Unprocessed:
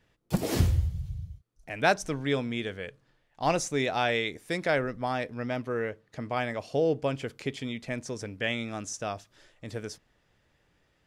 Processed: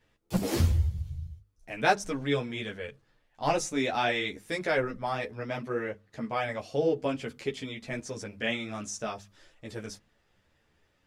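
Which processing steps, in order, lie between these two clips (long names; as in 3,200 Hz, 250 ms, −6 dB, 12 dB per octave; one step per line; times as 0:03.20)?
mains-hum notches 50/100/150/200/250 Hz
string-ensemble chorus
level +2.5 dB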